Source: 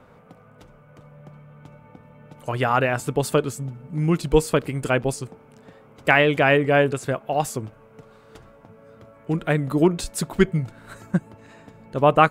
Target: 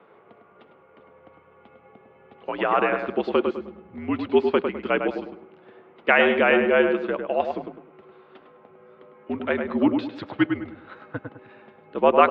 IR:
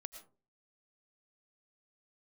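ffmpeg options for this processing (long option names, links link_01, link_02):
-filter_complex "[0:a]asplit=2[link_01][link_02];[link_02]adelay=103,lowpass=frequency=1900:poles=1,volume=-5dB,asplit=2[link_03][link_04];[link_04]adelay=103,lowpass=frequency=1900:poles=1,volume=0.37,asplit=2[link_05][link_06];[link_06]adelay=103,lowpass=frequency=1900:poles=1,volume=0.37,asplit=2[link_07][link_08];[link_08]adelay=103,lowpass=frequency=1900:poles=1,volume=0.37,asplit=2[link_09][link_10];[link_10]adelay=103,lowpass=frequency=1900:poles=1,volume=0.37[link_11];[link_01][link_03][link_05][link_07][link_09][link_11]amix=inputs=6:normalize=0,highpass=frequency=290:width_type=q:width=0.5412,highpass=frequency=290:width_type=q:width=1.307,lowpass=frequency=3600:width_type=q:width=0.5176,lowpass=frequency=3600:width_type=q:width=0.7071,lowpass=frequency=3600:width_type=q:width=1.932,afreqshift=-64,volume=-1dB"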